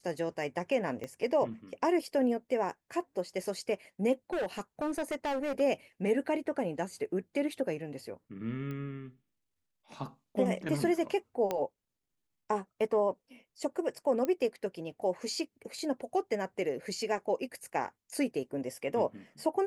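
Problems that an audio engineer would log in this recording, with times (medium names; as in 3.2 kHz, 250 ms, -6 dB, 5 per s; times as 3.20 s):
1.04 s: pop -25 dBFS
4.33–5.61 s: clipped -29.5 dBFS
8.71 s: pop -29 dBFS
11.51 s: pop -18 dBFS
14.25 s: pop -20 dBFS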